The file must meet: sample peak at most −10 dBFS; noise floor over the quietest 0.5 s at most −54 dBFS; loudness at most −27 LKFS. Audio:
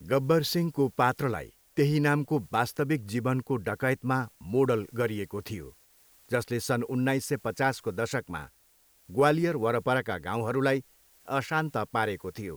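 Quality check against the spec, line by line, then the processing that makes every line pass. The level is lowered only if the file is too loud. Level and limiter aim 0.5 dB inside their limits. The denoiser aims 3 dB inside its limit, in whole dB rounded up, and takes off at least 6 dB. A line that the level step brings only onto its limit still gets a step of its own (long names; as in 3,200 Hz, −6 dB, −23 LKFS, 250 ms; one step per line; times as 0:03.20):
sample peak −9.0 dBFS: out of spec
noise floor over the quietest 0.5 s −64 dBFS: in spec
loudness −28.5 LKFS: in spec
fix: brickwall limiter −10.5 dBFS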